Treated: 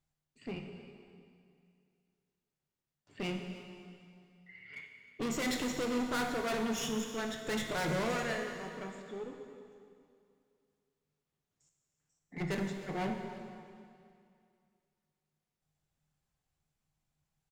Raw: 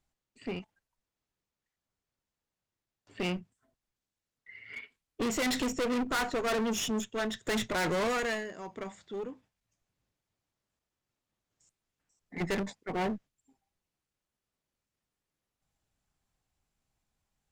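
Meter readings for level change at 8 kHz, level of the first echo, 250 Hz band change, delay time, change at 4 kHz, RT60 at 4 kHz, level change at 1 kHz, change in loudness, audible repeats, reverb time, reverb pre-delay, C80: -4.0 dB, -17.5 dB, -2.5 dB, 311 ms, -4.0 dB, 2.2 s, -3.5 dB, -3.5 dB, 1, 2.4 s, 5 ms, 5.5 dB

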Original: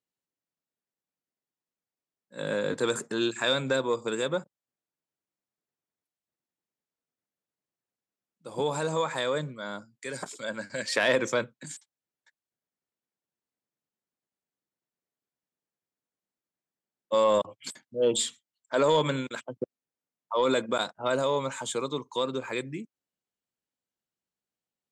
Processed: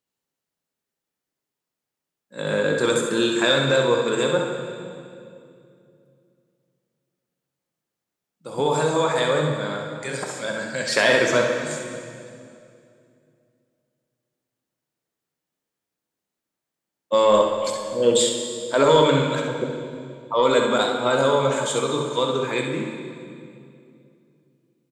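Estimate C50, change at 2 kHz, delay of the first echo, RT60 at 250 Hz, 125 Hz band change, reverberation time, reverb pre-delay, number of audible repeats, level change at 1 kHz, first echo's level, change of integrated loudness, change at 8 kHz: 2.0 dB, +8.0 dB, 66 ms, 3.1 s, +9.5 dB, 2.5 s, 13 ms, 1, +8.0 dB, -6.5 dB, +7.5 dB, +7.5 dB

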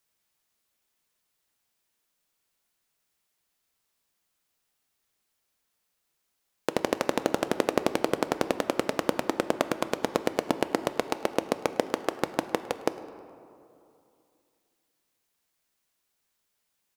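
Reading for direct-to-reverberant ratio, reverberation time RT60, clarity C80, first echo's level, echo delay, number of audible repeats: 10.5 dB, 2.6 s, 13.0 dB, -22.0 dB, 105 ms, 1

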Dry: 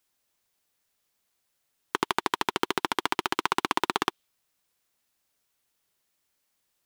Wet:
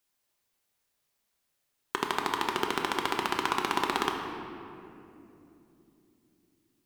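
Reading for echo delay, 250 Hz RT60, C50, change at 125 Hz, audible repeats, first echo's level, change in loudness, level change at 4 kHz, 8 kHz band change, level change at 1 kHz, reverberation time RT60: no echo, 4.7 s, 4.0 dB, 0.0 dB, no echo, no echo, -2.0 dB, -2.0 dB, -2.5 dB, -1.5 dB, 3.0 s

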